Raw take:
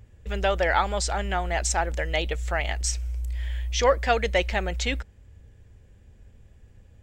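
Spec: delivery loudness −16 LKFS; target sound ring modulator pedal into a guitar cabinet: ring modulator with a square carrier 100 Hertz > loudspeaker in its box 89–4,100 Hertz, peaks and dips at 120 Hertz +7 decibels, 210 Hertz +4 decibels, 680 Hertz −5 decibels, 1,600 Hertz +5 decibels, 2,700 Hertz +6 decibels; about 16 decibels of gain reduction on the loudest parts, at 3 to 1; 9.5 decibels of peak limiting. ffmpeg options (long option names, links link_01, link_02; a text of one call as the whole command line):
ffmpeg -i in.wav -af "acompressor=threshold=-37dB:ratio=3,alimiter=level_in=6dB:limit=-24dB:level=0:latency=1,volume=-6dB,aeval=exprs='val(0)*sgn(sin(2*PI*100*n/s))':channel_layout=same,highpass=89,equalizer=frequency=120:width_type=q:width=4:gain=7,equalizer=frequency=210:width_type=q:width=4:gain=4,equalizer=frequency=680:width_type=q:width=4:gain=-5,equalizer=frequency=1600:width_type=q:width=4:gain=5,equalizer=frequency=2700:width_type=q:width=4:gain=6,lowpass=frequency=4100:width=0.5412,lowpass=frequency=4100:width=1.3066,volume=23dB" out.wav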